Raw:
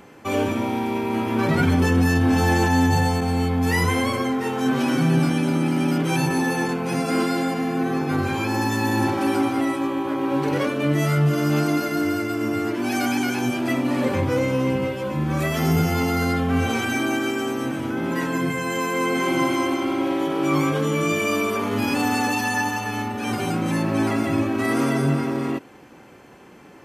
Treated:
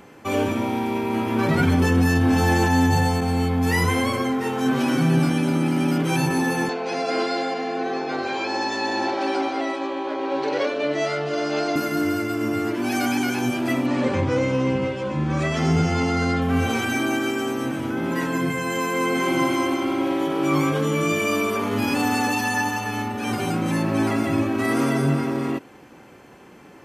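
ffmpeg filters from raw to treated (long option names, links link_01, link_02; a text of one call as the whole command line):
ffmpeg -i in.wav -filter_complex "[0:a]asettb=1/sr,asplit=3[link_01][link_02][link_03];[link_01]atrim=end=6.694[link_04];[link_02]atrim=start=6.69:end=11.76,asetpts=PTS-STARTPTS,afade=type=in:duration=0.004:curve=qsin,afade=type=out:start_time=5.066:duration=0.004:curve=qsin,highpass=410,equalizer=frequency=420:width_type=q:width=4:gain=4,equalizer=frequency=650:width_type=q:width=4:gain=7,equalizer=frequency=1200:width_type=q:width=4:gain=-4,equalizer=frequency=4200:width_type=q:width=4:gain=6,lowpass=frequency=6300:width=0.5412,lowpass=frequency=6300:width=1.3066[link_05];[link_03]atrim=start=11.756[link_06];[link_04][link_05]acrossfade=duration=0.004:curve1=hsin:curve2=qsin[link_07];[link_07][link_06]acrossfade=duration=0.004:curve1=qsin:curve2=hsin,asettb=1/sr,asplit=3[link_08][link_09][link_10];[link_08]atrim=end=13.864[link_11];[link_09]atrim=start=13.86:end=16.42,asetpts=PTS-STARTPTS,afade=type=in:duration=0.004:curve=qsin,afade=type=out:start_time=2.556:duration=0.004:curve=qsin,lowpass=frequency=7500:width=0.5412,lowpass=frequency=7500:width=1.3066[link_12];[link_10]atrim=start=16.416[link_13];[link_11][link_12]acrossfade=duration=0.004:curve1=hsin:curve2=qsin[link_14];[link_14][link_13]acrossfade=duration=0.004:curve1=qsin:curve2=hsin" out.wav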